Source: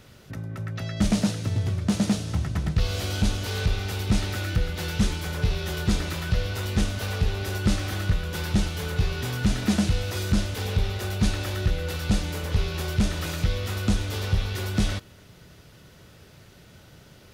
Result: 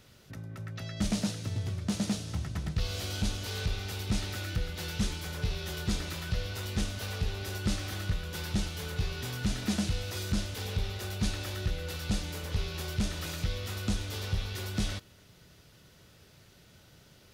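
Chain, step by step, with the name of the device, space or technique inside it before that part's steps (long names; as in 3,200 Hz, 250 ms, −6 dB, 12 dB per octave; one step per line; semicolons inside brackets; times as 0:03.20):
presence and air boost (parametric band 4,600 Hz +3.5 dB 1.8 octaves; high-shelf EQ 9,300 Hz +4.5 dB)
level −8 dB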